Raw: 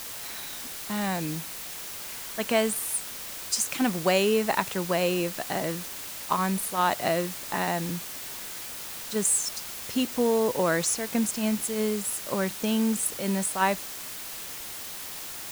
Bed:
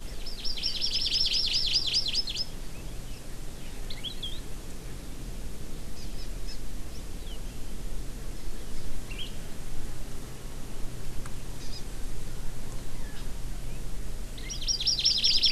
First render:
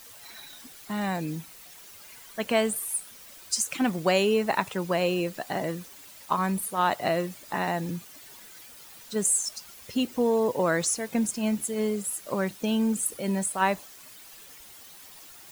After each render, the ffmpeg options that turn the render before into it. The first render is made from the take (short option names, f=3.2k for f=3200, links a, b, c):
-af "afftdn=nr=12:nf=-38"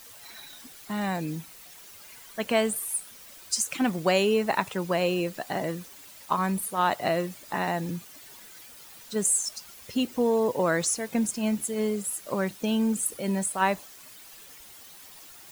-af anull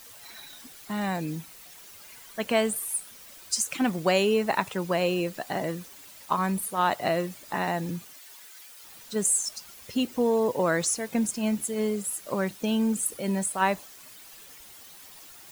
-filter_complex "[0:a]asettb=1/sr,asplit=3[a][b][c];[a]atrim=end=8.134[d];[b]atrim=start=8.13:end=8.84,asetpts=PTS-STARTPTS,afade=t=in:d=0.004:c=qsin,afade=t=out:st=0.706:d=0.004:c=qsin,highpass=f=950:p=1[e];[c]atrim=start=8.836[f];[d][e]acrossfade=d=0.004:c1=hsin:c2=qsin[g];[g][f]acrossfade=d=0.004:c1=qsin:c2=hsin"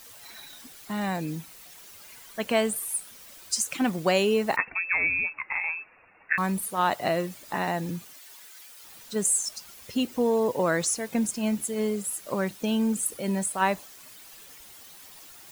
-filter_complex "[0:a]asettb=1/sr,asplit=3[a][b][c];[a]atrim=end=4.564[d];[b]atrim=start=4.56:end=6.38,asetpts=PTS-STARTPTS,afade=t=in:d=0.004:c=qsin,afade=t=out:st=1.816:d=0.004:c=qsin,lowpass=f=2.4k:t=q:w=0.5098,lowpass=f=2.4k:t=q:w=0.6013,lowpass=f=2.4k:t=q:w=0.9,lowpass=f=2.4k:t=q:w=2.563,afreqshift=-2800[e];[c]atrim=start=6.376[f];[d][e]acrossfade=d=0.004:c1=hsin:c2=qsin[g];[g][f]acrossfade=d=0.004:c1=qsin:c2=hsin"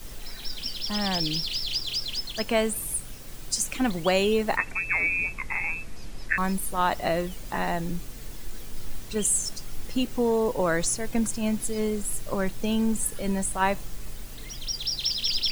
-filter_complex "[1:a]volume=-3dB[a];[0:a][a]amix=inputs=2:normalize=0"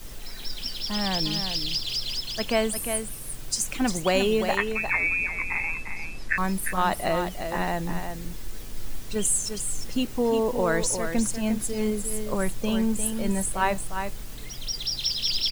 -af "aecho=1:1:352:0.422"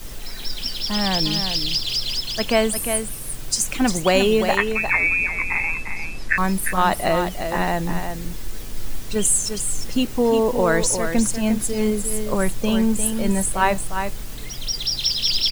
-af "volume=5.5dB"